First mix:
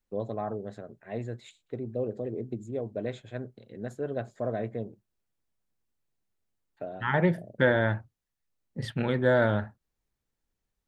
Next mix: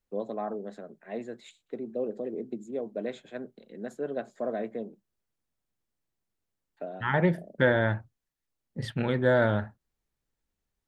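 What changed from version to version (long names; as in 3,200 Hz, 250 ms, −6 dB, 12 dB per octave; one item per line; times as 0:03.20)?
first voice: add Butterworth high-pass 160 Hz 48 dB per octave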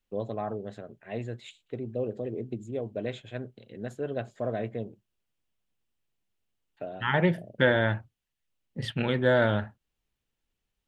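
first voice: remove Butterworth high-pass 160 Hz 48 dB per octave
master: add parametric band 2,900 Hz +9 dB 0.62 octaves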